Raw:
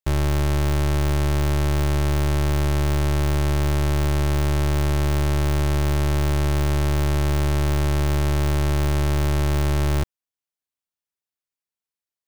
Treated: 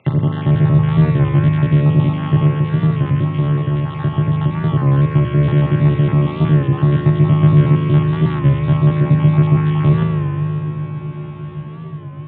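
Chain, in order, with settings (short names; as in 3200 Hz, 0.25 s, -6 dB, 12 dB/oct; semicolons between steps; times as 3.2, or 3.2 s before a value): random spectral dropouts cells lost 54%; 2.47–4.69 compressor, threshold -24 dBFS, peak gain reduction 4.5 dB; low shelf 170 Hz +11.5 dB; diffused feedback echo 1.772 s, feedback 41%, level -15 dB; upward compressor, threshold -27 dBFS; Chebyshev band-pass 110–3400 Hz, order 5; low shelf 340 Hz +10 dB; spring tank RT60 3.9 s, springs 39 ms, chirp 70 ms, DRR 0.5 dB; record warp 33 1/3 rpm, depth 100 cents; gain +1 dB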